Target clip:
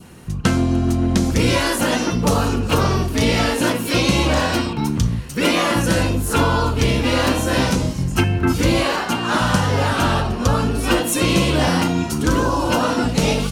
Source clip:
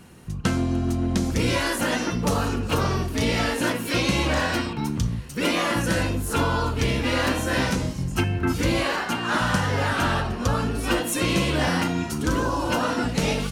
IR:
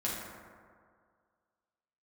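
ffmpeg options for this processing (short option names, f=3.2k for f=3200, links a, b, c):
-af "adynamicequalizer=threshold=0.00794:dfrequency=1800:dqfactor=2:tfrequency=1800:tqfactor=2:attack=5:release=100:ratio=0.375:range=3:mode=cutabove:tftype=bell,volume=6dB"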